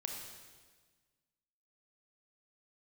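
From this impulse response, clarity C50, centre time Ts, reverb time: 2.5 dB, 57 ms, 1.4 s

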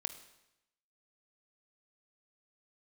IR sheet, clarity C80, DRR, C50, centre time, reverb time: 14.0 dB, 9.0 dB, 12.0 dB, 9 ms, 0.90 s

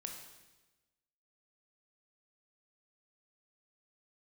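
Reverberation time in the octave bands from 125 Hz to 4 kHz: 1.3 s, 1.3 s, 1.2 s, 1.1 s, 1.1 s, 1.1 s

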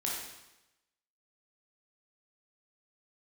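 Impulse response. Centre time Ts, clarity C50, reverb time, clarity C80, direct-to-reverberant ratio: 63 ms, 0.5 dB, 0.95 s, 4.0 dB, -4.5 dB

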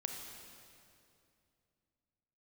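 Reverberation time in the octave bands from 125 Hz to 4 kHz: 3.3 s, 3.1 s, 2.7 s, 2.4 s, 2.2 s, 2.1 s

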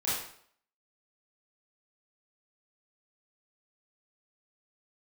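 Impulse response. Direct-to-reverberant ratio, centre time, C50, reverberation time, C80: -10.0 dB, 61 ms, 0.5 dB, 0.60 s, 4.5 dB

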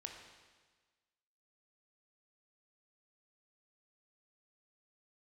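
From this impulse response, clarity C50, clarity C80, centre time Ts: 4.0 dB, 5.5 dB, 48 ms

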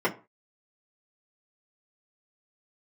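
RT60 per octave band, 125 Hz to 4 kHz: 0.35 s, 0.30 s, 0.35 s, 0.35 s, 0.25 s, 0.20 s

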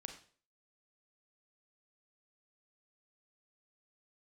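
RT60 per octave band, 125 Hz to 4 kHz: 0.45 s, 0.45 s, 0.50 s, 0.40 s, 0.40 s, 0.40 s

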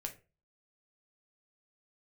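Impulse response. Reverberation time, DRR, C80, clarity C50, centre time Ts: 0.30 s, 3.5 dB, 19.5 dB, 13.5 dB, 10 ms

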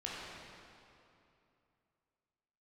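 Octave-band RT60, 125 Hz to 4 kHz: 3.1 s, 2.9 s, 2.8 s, 2.7 s, 2.4 s, 2.1 s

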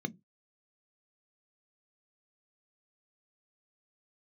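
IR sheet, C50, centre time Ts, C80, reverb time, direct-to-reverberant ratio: 26.5 dB, 5 ms, 35.0 dB, no single decay rate, 12.0 dB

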